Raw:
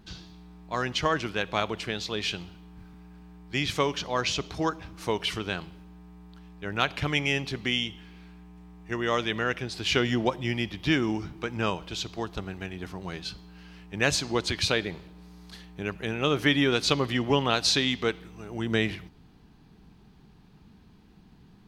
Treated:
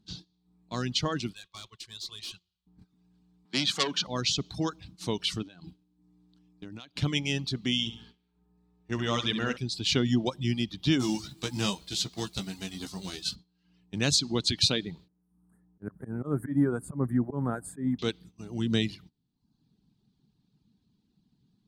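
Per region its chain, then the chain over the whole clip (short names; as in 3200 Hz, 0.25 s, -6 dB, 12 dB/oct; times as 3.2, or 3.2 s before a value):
1.33–2.67 passive tone stack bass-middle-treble 10-0-10 + tube stage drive 37 dB, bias 0.4 + small resonant body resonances 360/1100 Hz, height 15 dB, ringing for 95 ms
3.45–4.07 HPF 160 Hz 24 dB/oct + bell 1300 Hz +10.5 dB 2.3 oct + core saturation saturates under 4000 Hz
5.42–6.97 bell 290 Hz +9 dB 0.36 oct + compressor 20:1, threshold -36 dBFS
7.79–9.57 bell 1400 Hz +4 dB 2.5 oct + feedback echo 69 ms, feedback 49%, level -5.5 dB + mismatched tape noise reduction decoder only
10.99–13.34 spectral whitening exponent 0.6 + doubler 15 ms -6 dB
15.08–17.99 elliptic band-stop 1600–9200 Hz + auto swell 0.115 s
whole clip: gate -44 dBFS, range -14 dB; reverb removal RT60 0.7 s; ten-band EQ 125 Hz +10 dB, 250 Hz +10 dB, 2000 Hz -4 dB, 4000 Hz +12 dB, 8000 Hz +9 dB; gain -8 dB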